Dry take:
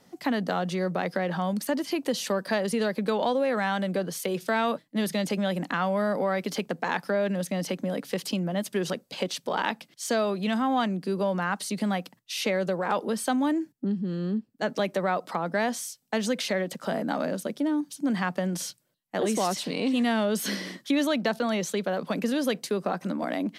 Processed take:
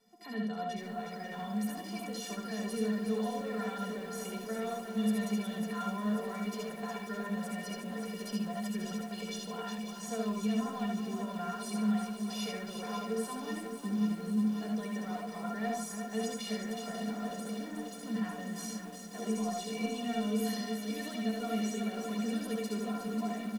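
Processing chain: peak limiter -20.5 dBFS, peak gain reduction 8 dB; inharmonic resonator 210 Hz, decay 0.22 s, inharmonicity 0.03; multi-tap echo 67/77/80/146/366/445 ms -4.5/-18/-4.5/-12.5/-6.5/-18.5 dB; bit-crushed delay 541 ms, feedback 80%, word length 9-bit, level -8.5 dB

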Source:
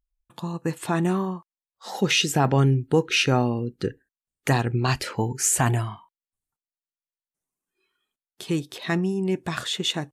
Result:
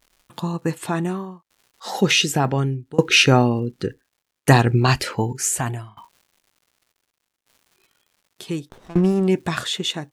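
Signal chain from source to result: crackle 240 per s -52 dBFS; tremolo saw down 0.67 Hz, depth 95%; 8.69–9.28 s: sliding maximum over 17 samples; trim +8.5 dB

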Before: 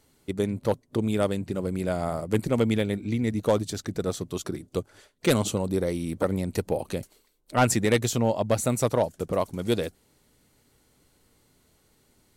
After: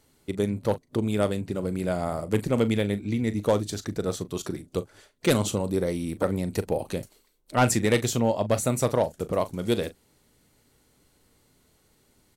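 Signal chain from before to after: doubling 39 ms -14 dB

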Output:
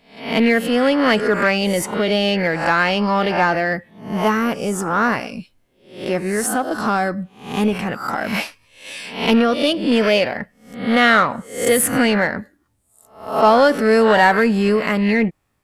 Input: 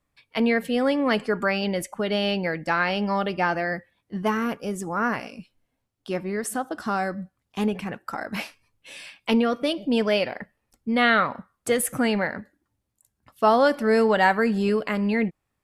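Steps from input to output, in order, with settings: reverse spectral sustain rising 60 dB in 0.48 s; in parallel at -5 dB: saturation -23 dBFS, distortion -8 dB; on the sum: trim +3.5 dB

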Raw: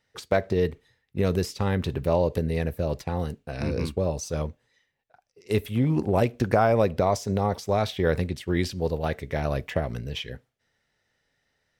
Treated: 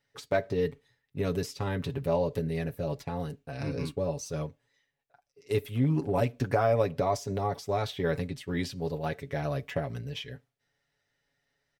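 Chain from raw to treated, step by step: comb 7.1 ms, depth 72%; trim -6.5 dB

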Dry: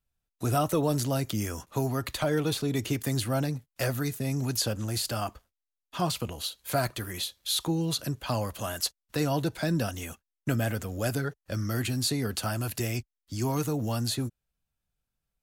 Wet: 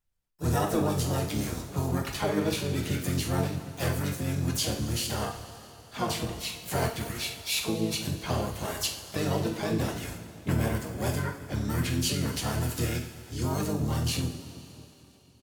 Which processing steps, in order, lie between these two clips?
two-slope reverb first 0.43 s, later 3.2 s, from -15 dB, DRR 0 dB; harmony voices -7 st -2 dB, +5 st -6 dB; trim -5.5 dB

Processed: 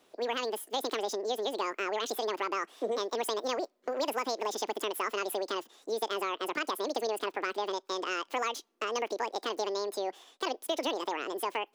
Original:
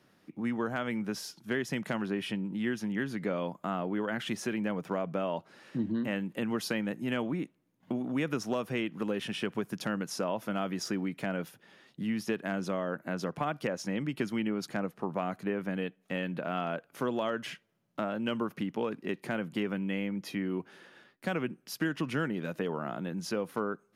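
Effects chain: wide varispeed 2.04×

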